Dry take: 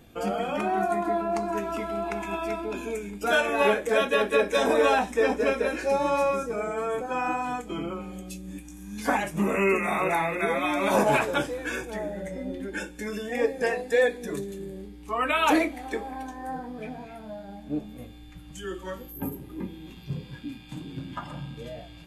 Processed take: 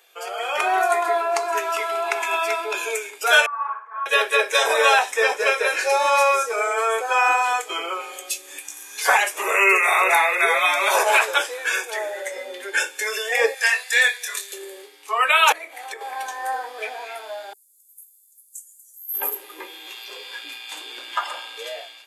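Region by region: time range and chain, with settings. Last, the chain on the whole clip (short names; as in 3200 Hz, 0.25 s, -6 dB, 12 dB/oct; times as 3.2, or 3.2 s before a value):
3.46–4.06 Butterworth band-pass 1100 Hz, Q 4.2 + flutter echo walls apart 10.1 m, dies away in 0.47 s
13.54–14.53 HPF 1400 Hz + doubler 25 ms -5.5 dB
15.52–16.01 dynamic EQ 4700 Hz, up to -6 dB, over -46 dBFS, Q 0.82 + compressor 16:1, threshold -34 dBFS
17.53–19.14 inverse Chebyshev high-pass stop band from 2900 Hz, stop band 60 dB + doubler 16 ms -12 dB
whole clip: elliptic high-pass 400 Hz, stop band 60 dB; tilt shelf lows -9 dB, about 750 Hz; AGC gain up to 11.5 dB; gain -2.5 dB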